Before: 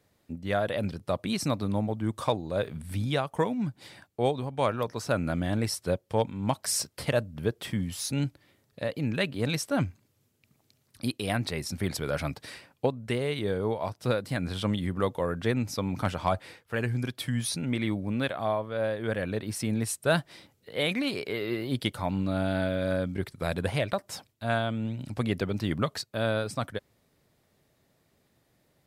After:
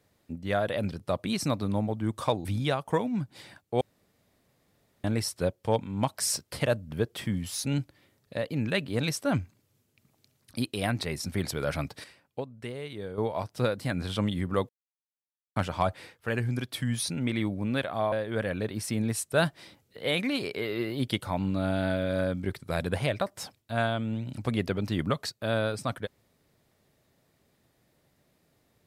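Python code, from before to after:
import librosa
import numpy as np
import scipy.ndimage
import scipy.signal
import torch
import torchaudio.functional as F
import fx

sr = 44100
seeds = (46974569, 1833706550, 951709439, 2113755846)

y = fx.edit(x, sr, fx.cut(start_s=2.45, length_s=0.46),
    fx.room_tone_fill(start_s=4.27, length_s=1.23),
    fx.clip_gain(start_s=12.5, length_s=1.14, db=-8.5),
    fx.silence(start_s=15.15, length_s=0.87),
    fx.cut(start_s=18.58, length_s=0.26), tone=tone)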